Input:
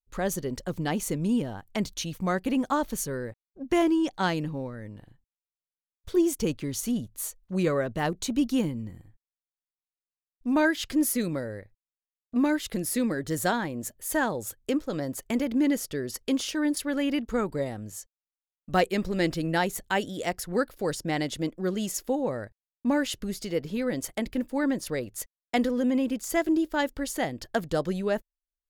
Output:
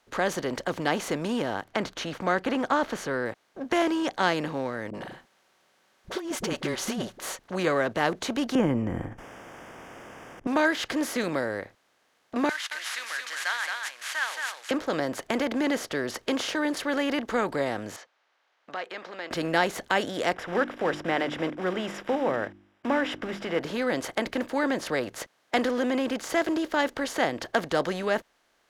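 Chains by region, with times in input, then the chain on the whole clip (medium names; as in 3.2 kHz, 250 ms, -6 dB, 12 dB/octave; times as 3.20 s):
1.64–3.26 s: low-pass 2.9 kHz 6 dB/octave + peaking EQ 1.4 kHz +5.5 dB 0.22 oct
4.90–7.39 s: compressor with a negative ratio -28 dBFS, ratio -0.5 + comb 5.3 ms, depth 46% + phase dispersion highs, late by 41 ms, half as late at 380 Hz
8.55–10.47 s: Butterworth band-stop 4.1 kHz, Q 1.7 + tilt EQ -4.5 dB/octave + decay stretcher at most 21 dB/s
12.49–14.71 s: CVSD coder 64 kbps + high-pass 1.5 kHz 24 dB/octave + delay 221 ms -6.5 dB
17.96–19.31 s: distance through air 230 m + compression 4:1, threshold -36 dBFS + high-pass 810 Hz
20.34–23.61 s: block-companded coder 5-bit + Savitzky-Golay filter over 25 samples + hum notches 50/100/150/200/250/300/350 Hz
whole clip: spectral levelling over time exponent 0.6; high-pass 62 Hz 6 dB/octave; three-band isolator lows -13 dB, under 350 Hz, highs -15 dB, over 5.9 kHz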